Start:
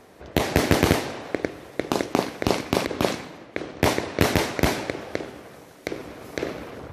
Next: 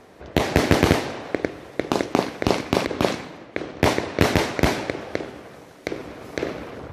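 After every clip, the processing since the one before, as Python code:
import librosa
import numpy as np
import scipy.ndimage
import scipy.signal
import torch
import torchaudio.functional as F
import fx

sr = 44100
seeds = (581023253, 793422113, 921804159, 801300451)

y = fx.high_shelf(x, sr, hz=9300.0, db=-9.5)
y = y * 10.0 ** (2.0 / 20.0)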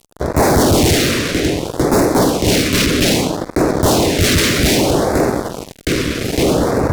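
y = fx.fuzz(x, sr, gain_db=37.0, gate_db=-41.0)
y = fx.phaser_stages(y, sr, stages=2, low_hz=780.0, high_hz=3100.0, hz=0.62, feedback_pct=5)
y = y * 10.0 ** (4.5 / 20.0)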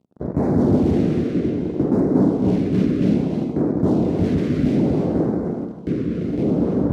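y = fx.bandpass_q(x, sr, hz=200.0, q=1.5)
y = fx.rev_gated(y, sr, seeds[0], gate_ms=340, shape='rising', drr_db=3.5)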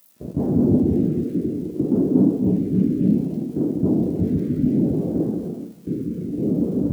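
y = x + 0.5 * 10.0 ** (-20.5 / 20.0) * np.diff(np.sign(x), prepend=np.sign(x[:1]))
y = fx.spectral_expand(y, sr, expansion=1.5)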